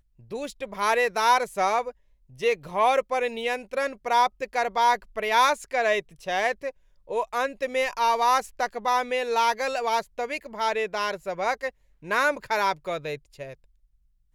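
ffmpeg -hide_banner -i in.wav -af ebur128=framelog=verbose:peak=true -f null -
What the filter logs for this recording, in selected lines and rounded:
Integrated loudness:
  I:         -25.4 LUFS
  Threshold: -35.8 LUFS
Loudness range:
  LRA:         3.2 LU
  Threshold: -45.6 LUFS
  LRA low:   -27.6 LUFS
  LRA high:  -24.4 LUFS
True peak:
  Peak:       -9.0 dBFS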